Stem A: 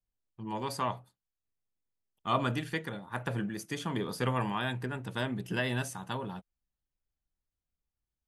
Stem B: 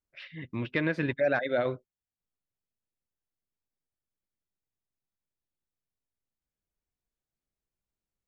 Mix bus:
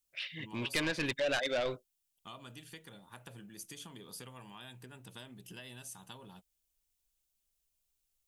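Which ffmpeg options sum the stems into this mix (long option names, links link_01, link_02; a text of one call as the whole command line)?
ffmpeg -i stem1.wav -i stem2.wav -filter_complex "[0:a]acompressor=threshold=-38dB:ratio=5,volume=-10.5dB[link_01];[1:a]lowshelf=frequency=430:gain=-6,asoftclip=type=tanh:threshold=-28dB,asubboost=boost=4.5:cutoff=56,volume=0.5dB[link_02];[link_01][link_02]amix=inputs=2:normalize=0,aexciter=amount=2.4:drive=6.7:freq=2600" out.wav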